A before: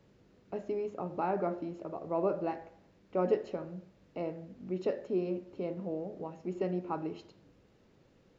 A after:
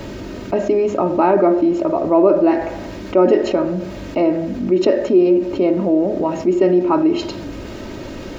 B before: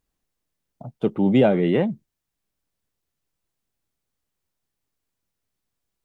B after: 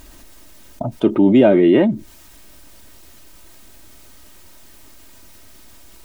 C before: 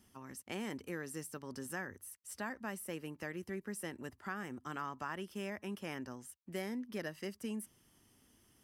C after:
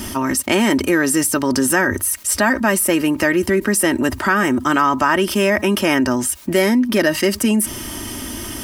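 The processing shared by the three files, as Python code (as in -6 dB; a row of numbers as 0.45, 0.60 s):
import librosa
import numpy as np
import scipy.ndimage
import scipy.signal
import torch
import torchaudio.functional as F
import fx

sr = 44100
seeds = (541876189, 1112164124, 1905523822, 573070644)

y = x + 0.56 * np.pad(x, (int(3.2 * sr / 1000.0), 0))[:len(x)]
y = fx.dynamic_eq(y, sr, hz=330.0, q=2.4, threshold_db=-38.0, ratio=4.0, max_db=5)
y = fx.env_flatten(y, sr, amount_pct=50)
y = librosa.util.normalize(y) * 10.0 ** (-2 / 20.0)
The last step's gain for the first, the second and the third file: +12.0, +1.0, +23.0 dB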